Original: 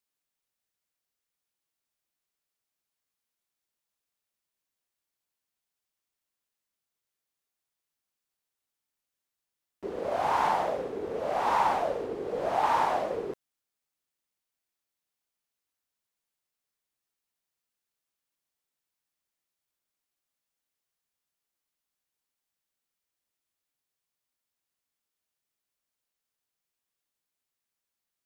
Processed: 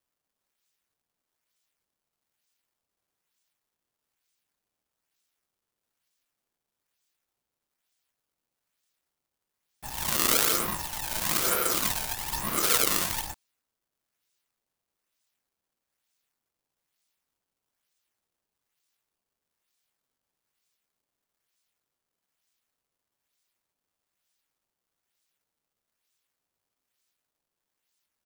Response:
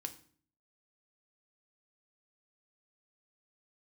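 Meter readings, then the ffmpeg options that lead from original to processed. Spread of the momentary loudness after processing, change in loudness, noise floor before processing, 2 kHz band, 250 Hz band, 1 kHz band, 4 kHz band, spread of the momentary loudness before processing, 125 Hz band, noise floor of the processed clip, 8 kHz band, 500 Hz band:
11 LU, +3.5 dB, under -85 dBFS, +5.0 dB, +2.0 dB, -7.5 dB, +14.5 dB, 11 LU, +6.0 dB, under -85 dBFS, +24.5 dB, -6.5 dB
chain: -af "aecho=1:1:6.4:0.35,alimiter=limit=-17dB:level=0:latency=1:release=270,acrusher=samples=16:mix=1:aa=0.000001:lfo=1:lforange=25.6:lforate=1.1,crystalizer=i=5.5:c=0,aeval=exprs='val(0)*sgn(sin(2*PI*440*n/s))':c=same,volume=-5.5dB"

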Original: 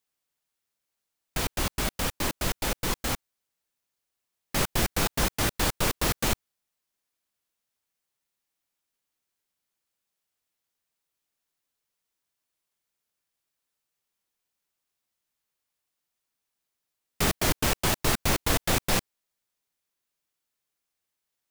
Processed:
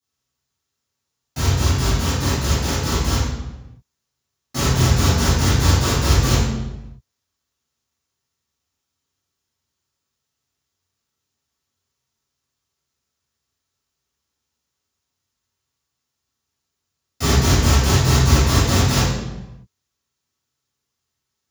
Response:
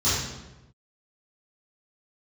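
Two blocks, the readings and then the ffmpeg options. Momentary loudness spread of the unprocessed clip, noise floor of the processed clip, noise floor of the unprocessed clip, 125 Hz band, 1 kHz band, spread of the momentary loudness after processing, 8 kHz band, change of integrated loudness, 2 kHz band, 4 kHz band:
6 LU, -80 dBFS, -84 dBFS, +17.0 dB, +7.0 dB, 13 LU, +6.5 dB, +9.0 dB, +5.0 dB, +7.5 dB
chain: -filter_complex "[1:a]atrim=start_sample=2205[a];[0:a][a]afir=irnorm=-1:irlink=0,volume=-8.5dB"

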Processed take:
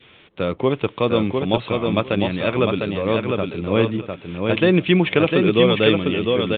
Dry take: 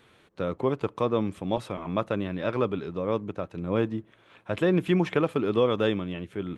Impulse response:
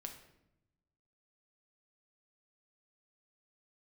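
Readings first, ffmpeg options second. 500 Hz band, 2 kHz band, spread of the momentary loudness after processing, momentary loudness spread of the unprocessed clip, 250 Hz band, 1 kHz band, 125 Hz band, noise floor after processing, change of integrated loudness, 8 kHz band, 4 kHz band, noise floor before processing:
+8.0 dB, +12.0 dB, 8 LU, 10 LU, +8.5 dB, +6.5 dB, +8.5 dB, -49 dBFS, +8.5 dB, n/a, +15.0 dB, -60 dBFS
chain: -filter_complex "[0:a]aexciter=amount=2.5:drive=5.5:freq=2.2k,adynamicequalizer=threshold=0.00794:dfrequency=1000:dqfactor=1.5:tfrequency=1000:tqfactor=1.5:attack=5:release=100:ratio=0.375:range=2:mode=cutabove:tftype=bell,asplit=2[a][b];[b]aecho=0:1:703|1406|2109:0.631|0.101|0.0162[c];[a][c]amix=inputs=2:normalize=0,volume=7dB" -ar 8000 -c:a pcm_mulaw

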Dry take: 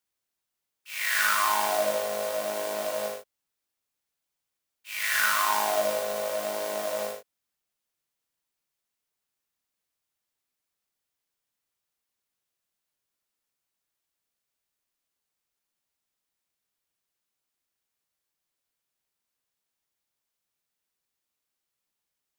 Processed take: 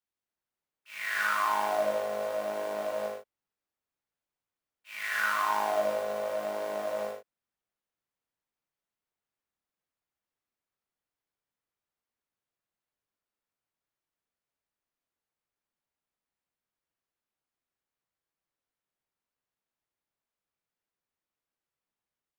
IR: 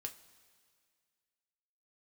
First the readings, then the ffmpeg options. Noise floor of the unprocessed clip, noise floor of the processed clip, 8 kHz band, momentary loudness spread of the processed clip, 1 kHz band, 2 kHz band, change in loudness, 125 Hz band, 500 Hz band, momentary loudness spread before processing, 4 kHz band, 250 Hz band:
-85 dBFS, under -85 dBFS, -13.5 dB, 11 LU, -2.0 dB, -4.0 dB, -4.0 dB, n/a, -1.5 dB, 12 LU, -9.5 dB, -1.5 dB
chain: -filter_complex "[0:a]highshelf=f=3.8k:g=-9,acrossover=split=2300[a][b];[a]dynaudnorm=f=190:g=3:m=4.5dB[c];[c][b]amix=inputs=2:normalize=0,volume=-6dB"

